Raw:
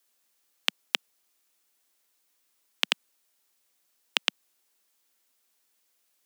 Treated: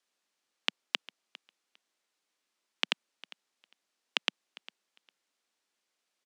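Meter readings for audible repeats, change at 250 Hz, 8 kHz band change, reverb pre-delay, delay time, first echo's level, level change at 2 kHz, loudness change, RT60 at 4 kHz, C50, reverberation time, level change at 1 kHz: 1, −3.0 dB, −9.0 dB, no reverb audible, 403 ms, −20.0 dB, −4.0 dB, −4.5 dB, no reverb audible, no reverb audible, no reverb audible, −3.5 dB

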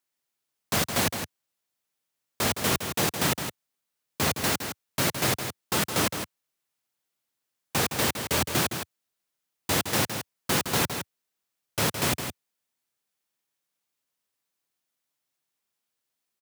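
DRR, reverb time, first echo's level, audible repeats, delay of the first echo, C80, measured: no reverb audible, no reverb audible, −8.0 dB, 1, 164 ms, no reverb audible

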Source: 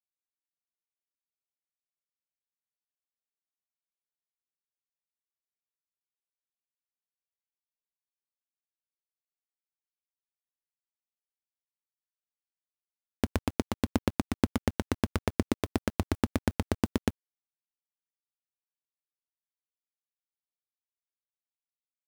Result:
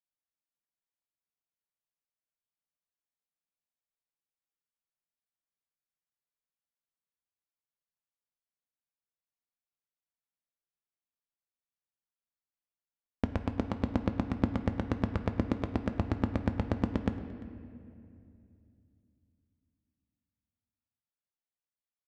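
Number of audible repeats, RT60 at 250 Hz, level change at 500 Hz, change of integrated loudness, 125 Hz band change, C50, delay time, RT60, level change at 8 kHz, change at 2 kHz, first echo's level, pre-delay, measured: 1, 3.4 s, −2.5 dB, −1.5 dB, +1.0 dB, 10.0 dB, 345 ms, 2.6 s, below −15 dB, −4.5 dB, −21.0 dB, 6 ms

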